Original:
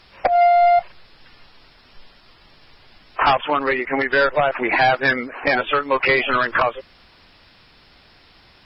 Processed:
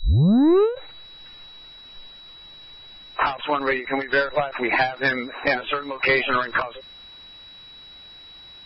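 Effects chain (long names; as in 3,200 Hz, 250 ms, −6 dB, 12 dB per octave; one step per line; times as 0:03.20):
turntable start at the beginning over 1.04 s
steady tone 3,900 Hz −40 dBFS
every ending faded ahead of time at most 150 dB per second
level −2 dB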